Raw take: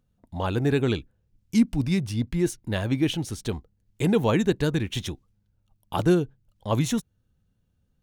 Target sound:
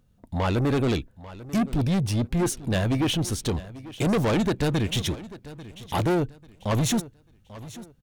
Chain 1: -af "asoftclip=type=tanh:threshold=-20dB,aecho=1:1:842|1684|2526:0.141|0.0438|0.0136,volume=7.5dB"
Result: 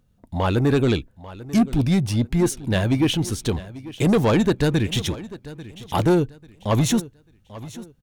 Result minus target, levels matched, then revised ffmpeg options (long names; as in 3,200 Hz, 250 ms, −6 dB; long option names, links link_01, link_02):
soft clipping: distortion −5 dB
-af "asoftclip=type=tanh:threshold=-27.5dB,aecho=1:1:842|1684|2526:0.141|0.0438|0.0136,volume=7.5dB"